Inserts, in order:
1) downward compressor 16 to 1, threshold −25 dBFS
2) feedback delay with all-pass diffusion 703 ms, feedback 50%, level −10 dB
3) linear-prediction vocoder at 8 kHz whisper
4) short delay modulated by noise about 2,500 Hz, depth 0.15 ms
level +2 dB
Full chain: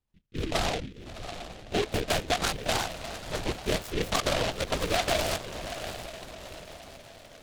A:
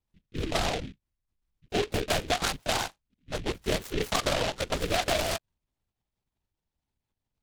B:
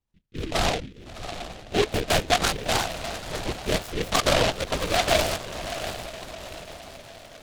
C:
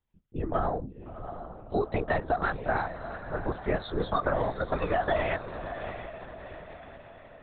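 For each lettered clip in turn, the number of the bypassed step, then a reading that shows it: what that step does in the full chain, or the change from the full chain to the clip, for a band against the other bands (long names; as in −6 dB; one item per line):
2, change in momentary loudness spread −6 LU
1, average gain reduction 3.0 dB
4, 4 kHz band −16.0 dB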